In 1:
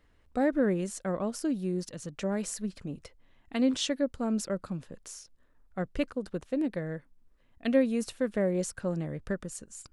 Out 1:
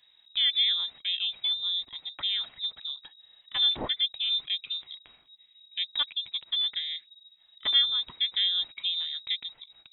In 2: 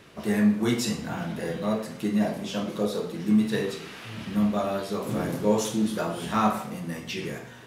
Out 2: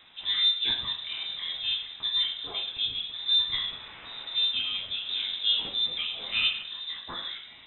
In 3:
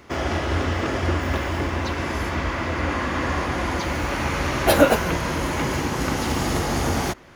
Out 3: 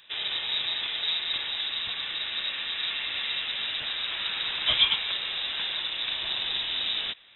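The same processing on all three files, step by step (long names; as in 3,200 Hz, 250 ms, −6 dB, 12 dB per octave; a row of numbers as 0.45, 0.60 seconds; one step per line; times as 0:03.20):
pitch vibrato 5.9 Hz 5.9 cents
voice inversion scrambler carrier 3,800 Hz
loudness normalisation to −27 LKFS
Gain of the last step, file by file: +1.0, −3.5, −7.5 decibels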